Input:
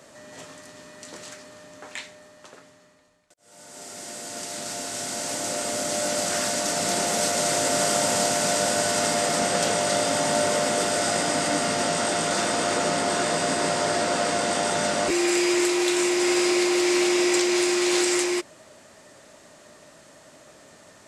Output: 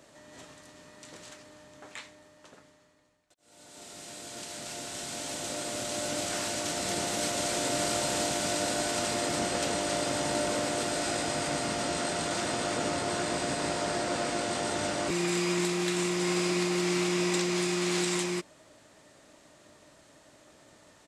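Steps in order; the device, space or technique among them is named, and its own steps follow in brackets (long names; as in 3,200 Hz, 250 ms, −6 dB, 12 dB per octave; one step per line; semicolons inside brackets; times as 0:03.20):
octave pedal (pitch-shifted copies added −12 semitones −5 dB)
level −8 dB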